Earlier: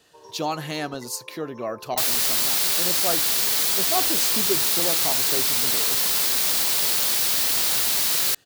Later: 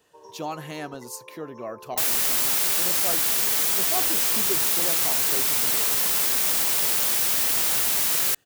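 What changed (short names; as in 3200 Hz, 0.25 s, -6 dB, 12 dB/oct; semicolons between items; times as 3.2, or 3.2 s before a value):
speech -5.0 dB; master: add bell 4300 Hz -6.5 dB 0.7 oct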